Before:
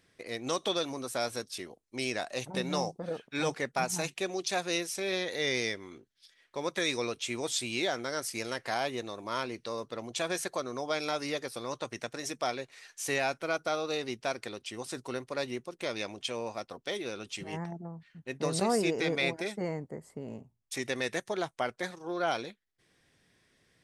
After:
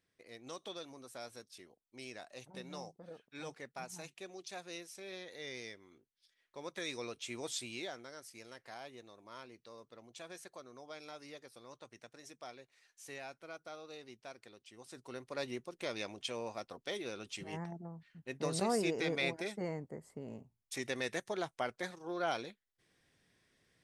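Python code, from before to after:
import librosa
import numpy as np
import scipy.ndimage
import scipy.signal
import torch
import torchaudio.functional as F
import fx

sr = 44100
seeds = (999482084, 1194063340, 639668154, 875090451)

y = fx.gain(x, sr, db=fx.line((5.87, -15.0), (7.52, -7.5), (8.19, -17.0), (14.69, -17.0), (15.44, -5.0)))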